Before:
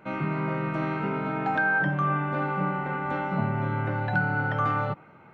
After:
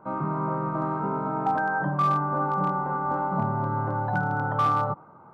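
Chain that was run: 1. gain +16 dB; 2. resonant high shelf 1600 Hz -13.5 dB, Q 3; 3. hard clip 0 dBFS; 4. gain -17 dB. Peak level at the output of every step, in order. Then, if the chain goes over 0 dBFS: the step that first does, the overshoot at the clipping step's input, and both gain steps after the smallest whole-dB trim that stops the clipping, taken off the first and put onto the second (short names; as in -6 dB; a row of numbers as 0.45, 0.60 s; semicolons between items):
+2.5, +4.0, 0.0, -17.0 dBFS; step 1, 4.0 dB; step 1 +12 dB, step 4 -13 dB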